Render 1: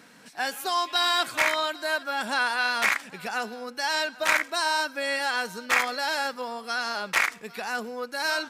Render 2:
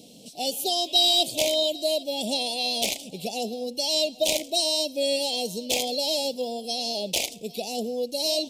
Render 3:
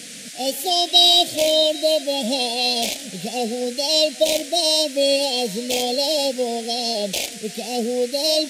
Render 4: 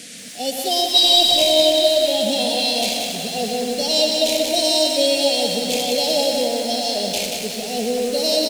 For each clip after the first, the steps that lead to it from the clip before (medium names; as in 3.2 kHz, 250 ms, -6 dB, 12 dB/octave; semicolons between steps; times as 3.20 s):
elliptic band-stop 650–3100 Hz, stop band 60 dB; trim +7 dB
harmonic-percussive split harmonic +9 dB; band noise 1.7–10 kHz -36 dBFS; trim -2 dB
on a send: multi-tap echo 92/122/282/631/883 ms -17.5/-8.5/-11.5/-11.5/-17.5 dB; on the sum: bit-crushed delay 183 ms, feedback 55%, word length 6-bit, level -4 dB; trim -1 dB